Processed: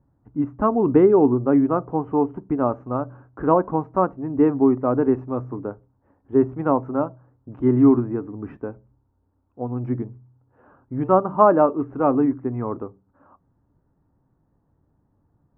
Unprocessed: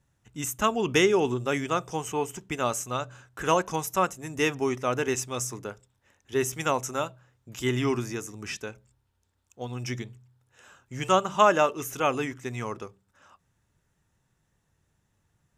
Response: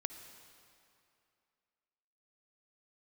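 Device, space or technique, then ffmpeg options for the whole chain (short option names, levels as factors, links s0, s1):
under water: -af "lowpass=f=1100:w=0.5412,lowpass=f=1100:w=1.3066,equalizer=f=280:t=o:w=0.36:g=10.5,volume=2"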